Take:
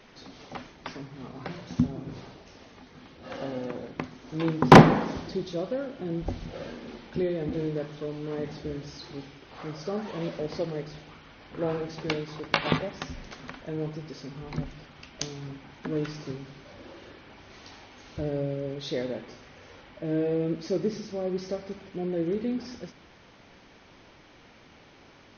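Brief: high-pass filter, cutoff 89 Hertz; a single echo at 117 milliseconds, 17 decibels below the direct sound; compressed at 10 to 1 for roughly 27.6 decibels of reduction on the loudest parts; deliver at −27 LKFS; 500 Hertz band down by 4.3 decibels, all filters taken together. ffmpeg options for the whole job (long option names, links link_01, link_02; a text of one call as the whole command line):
ffmpeg -i in.wav -af "highpass=89,equalizer=frequency=500:width_type=o:gain=-5.5,acompressor=threshold=-37dB:ratio=10,aecho=1:1:117:0.141,volume=16.5dB" out.wav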